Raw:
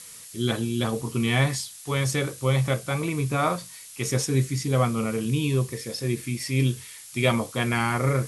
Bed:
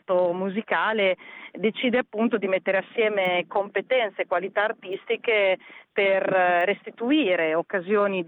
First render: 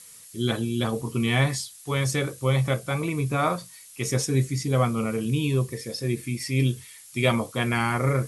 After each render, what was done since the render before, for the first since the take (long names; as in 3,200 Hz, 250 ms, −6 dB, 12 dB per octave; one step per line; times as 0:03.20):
broadband denoise 6 dB, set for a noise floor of −44 dBFS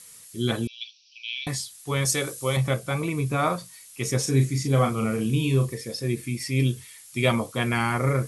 0:00.67–0:01.47: Chebyshev band-pass filter 2,400–5,800 Hz, order 5
0:02.05–0:02.57: bass and treble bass −7 dB, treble +8 dB
0:04.21–0:05.75: double-tracking delay 37 ms −6 dB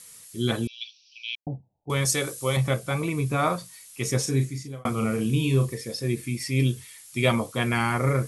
0:01.35–0:01.90: Chebyshev low-pass with heavy ripple 880 Hz, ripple 3 dB
0:04.18–0:04.85: fade out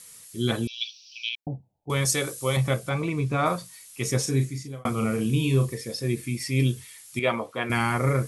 0:00.67–0:01.29: high-shelf EQ 3,300 Hz +12 dB
0:02.89–0:03.46: high-frequency loss of the air 65 metres
0:07.19–0:07.70: bass and treble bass −13 dB, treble −15 dB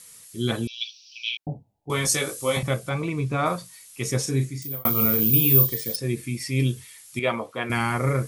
0:01.24–0:02.63: double-tracking delay 19 ms −2 dB
0:04.62–0:05.96: bad sample-rate conversion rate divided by 3×, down none, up zero stuff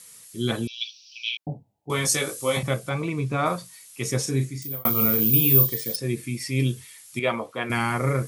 high-pass filter 89 Hz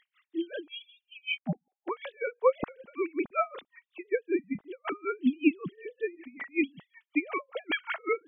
three sine waves on the formant tracks
tremolo with a sine in dB 5.3 Hz, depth 32 dB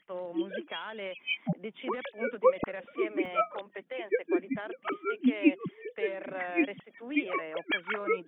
mix in bed −17 dB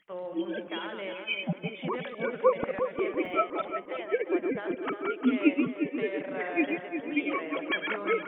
delay that plays each chunk backwards 113 ms, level −5.5 dB
on a send: feedback echo with a low-pass in the loop 354 ms, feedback 41%, low-pass 2,000 Hz, level −7 dB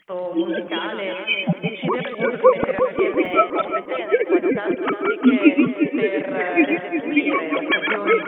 level +10.5 dB
brickwall limiter −2 dBFS, peak gain reduction 1.5 dB